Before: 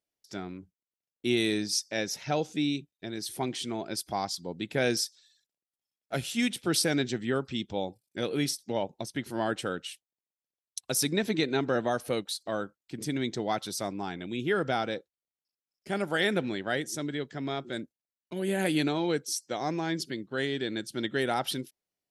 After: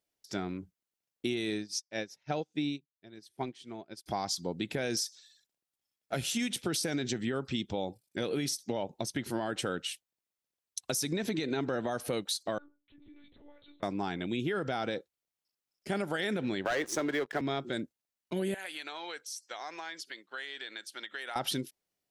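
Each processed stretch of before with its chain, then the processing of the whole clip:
1.34–4.06 s: treble shelf 7.6 kHz -8.5 dB + upward expansion 2.5:1, over -46 dBFS
12.58–13.83 s: compression 16:1, threshold -44 dBFS + inharmonic resonator 62 Hz, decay 0.63 s, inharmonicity 0.03 + monotone LPC vocoder at 8 kHz 290 Hz
16.65–17.41 s: three-band isolator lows -18 dB, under 370 Hz, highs -16 dB, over 2.6 kHz + waveshaping leveller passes 3
18.54–21.36 s: high-pass 1.1 kHz + compression 4:1, threshold -39 dBFS + treble shelf 3.9 kHz -6 dB
whole clip: dynamic bell 6.3 kHz, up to +5 dB, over -49 dBFS, Q 4; peak limiter -22.5 dBFS; compression, threshold -32 dBFS; trim +3.5 dB

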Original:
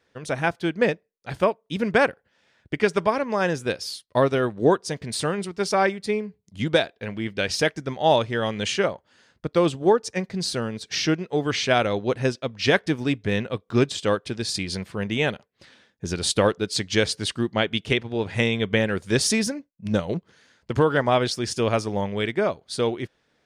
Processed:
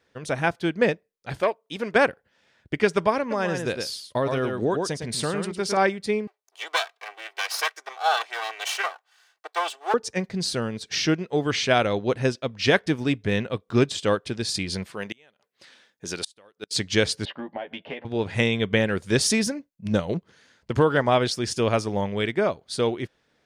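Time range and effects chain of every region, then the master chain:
1.40–1.96 s: tone controls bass -13 dB, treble 0 dB + transformer saturation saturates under 830 Hz
3.20–5.77 s: delay 107 ms -7.5 dB + compression 2.5:1, threshold -21 dBFS
6.27–9.94 s: comb filter that takes the minimum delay 2.6 ms + inverse Chebyshev high-pass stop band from 150 Hz, stop band 70 dB
14.86–16.71 s: high-pass 490 Hz 6 dB/octave + treble shelf 5.4 kHz +4 dB + inverted gate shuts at -16 dBFS, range -32 dB
17.25–18.05 s: cabinet simulation 320–2600 Hz, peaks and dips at 380 Hz -9 dB, 570 Hz +8 dB, 820 Hz +8 dB, 1.3 kHz -7 dB, 2.3 kHz -4 dB + compression 5:1, threshold -31 dBFS + doubling 12 ms -4 dB
whole clip: none

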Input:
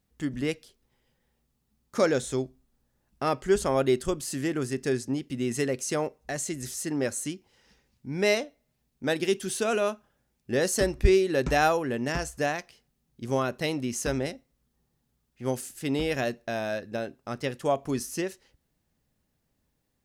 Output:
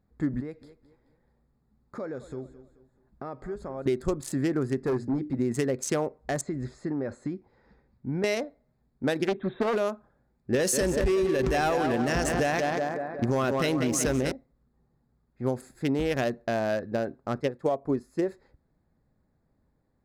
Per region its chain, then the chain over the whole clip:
0.40–3.86 s: compression 3:1, threshold -43 dBFS + feedback delay 216 ms, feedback 37%, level -15.5 dB
4.79–5.39 s: treble shelf 8.4 kHz -9 dB + hum notches 60/120/180/240/300 Hz + hard clipper -27 dBFS
6.41–8.24 s: compression 16:1, threshold -30 dBFS + distance through air 100 m
9.27–9.76 s: brick-wall FIR low-pass 3.9 kHz + loudspeaker Doppler distortion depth 0.45 ms
10.54–14.32 s: waveshaping leveller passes 2 + tape echo 186 ms, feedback 61%, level -7 dB, low-pass 5.3 kHz
17.40–18.28 s: dynamic bell 470 Hz, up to +6 dB, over -36 dBFS, Q 0.79 + upward expansion, over -36 dBFS
whole clip: local Wiener filter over 15 samples; peak limiter -17 dBFS; compression, threshold -28 dBFS; trim +5.5 dB

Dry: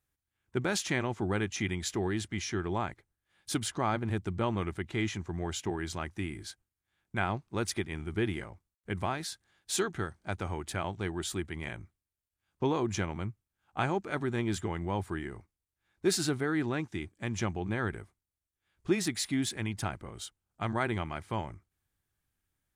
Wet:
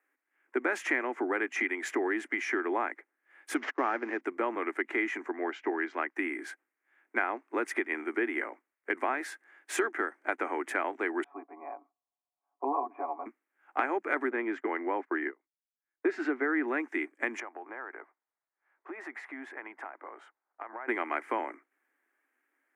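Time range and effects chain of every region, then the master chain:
3.56–4.21 s: CVSD coder 32 kbps + gate -40 dBFS, range -25 dB + high-pass 57 Hz
5.31–6.16 s: low-pass 4.9 kHz 24 dB/octave + upward expansion, over -56 dBFS
11.24–13.26 s: cascade formant filter a + bass shelf 490 Hz +11.5 dB + comb 7.1 ms, depth 99%
14.30–16.68 s: gate -40 dBFS, range -28 dB + distance through air 190 m
17.40–20.88 s: band-pass filter 880 Hz, Q 1.5 + compression, threshold -47 dBFS
whole clip: resonant high shelf 2.8 kHz -12 dB, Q 3; compression, threshold -33 dBFS; steep high-pass 260 Hz 72 dB/octave; trim +8 dB

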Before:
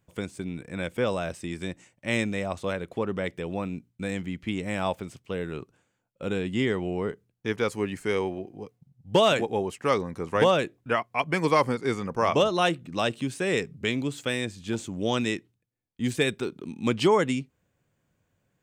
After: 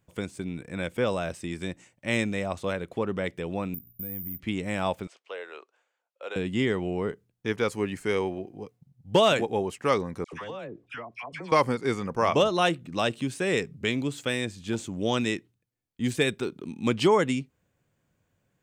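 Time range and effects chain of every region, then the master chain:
3.74–4.40 s: tilt EQ -3.5 dB/octave + compression 3:1, threshold -43 dBFS + careless resampling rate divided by 3×, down filtered, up zero stuff
5.07–6.36 s: high-pass 520 Hz 24 dB/octave + distance through air 88 m
10.24–11.52 s: phase dispersion lows, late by 87 ms, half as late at 1.3 kHz + compression, threshold -35 dBFS + distance through air 70 m
whole clip: none

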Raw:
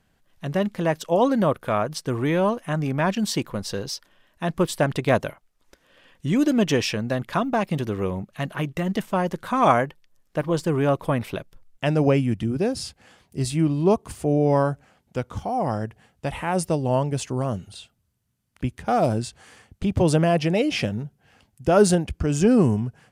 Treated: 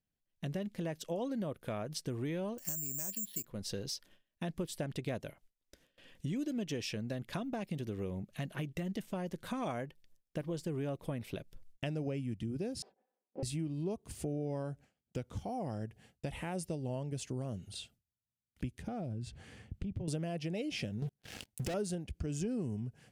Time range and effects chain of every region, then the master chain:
2.58–3.45 s: compression 2:1, threshold -26 dBFS + careless resampling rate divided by 6×, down filtered, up zero stuff
12.82–13.43 s: comb filter that takes the minimum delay 4 ms + Butterworth band-pass 600 Hz, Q 0.95 + comb 5.2 ms, depth 38%
18.87–20.08 s: tone controls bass +9 dB, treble -10 dB + compression, threshold -26 dBFS
21.02–21.74 s: bass shelf 420 Hz -3.5 dB + compression, threshold -25 dBFS + waveshaping leveller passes 5
whole clip: gate with hold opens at -44 dBFS; peaking EQ 1.1 kHz -10.5 dB 1.3 oct; compression 4:1, threshold -35 dBFS; trim -2 dB

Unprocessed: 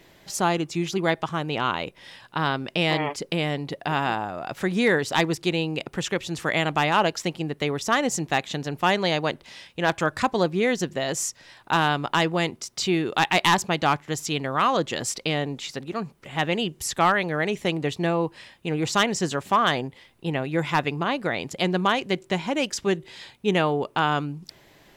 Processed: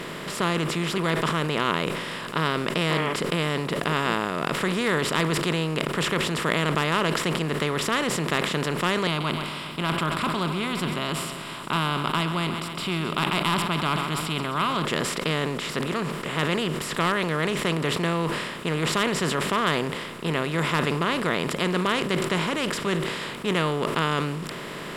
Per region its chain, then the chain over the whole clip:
9.07–14.85 s: static phaser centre 1.8 kHz, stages 6 + feedback delay 132 ms, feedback 58%, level -22.5 dB
whole clip: spectral levelling over time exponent 0.4; graphic EQ with 31 bands 160 Hz +6 dB, 800 Hz -10 dB, 6.3 kHz -10 dB; decay stretcher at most 36 dB/s; trim -7.5 dB

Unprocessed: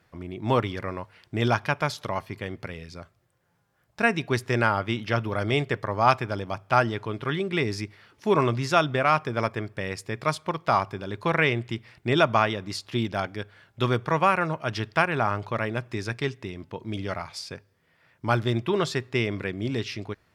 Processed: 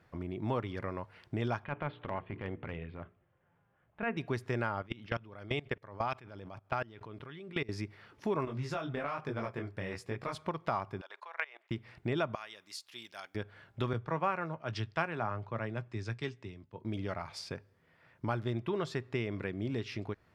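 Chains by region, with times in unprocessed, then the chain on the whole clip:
1.64–4.17 s: steep low-pass 3.3 kHz 48 dB/octave + hum notches 60/120/180/240/300/360/420/480 Hz + transient shaper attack -10 dB, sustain -1 dB
4.82–7.69 s: dynamic bell 3.1 kHz, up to +6 dB, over -40 dBFS, Q 0.92 + level held to a coarse grid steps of 23 dB
8.45–10.35 s: compression 4:1, threshold -22 dBFS + detune thickener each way 40 cents
11.01–11.71 s: high-pass 710 Hz 24 dB/octave + treble shelf 8.5 kHz -9.5 dB + level held to a coarse grid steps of 23 dB
12.35–13.35 s: differentiator + tape noise reduction on one side only encoder only
13.93–16.85 s: steep low-pass 9 kHz 72 dB/octave + doubling 18 ms -14 dB + three bands expanded up and down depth 100%
whole clip: treble shelf 3 kHz -9.5 dB; compression 2.5:1, threshold -35 dBFS

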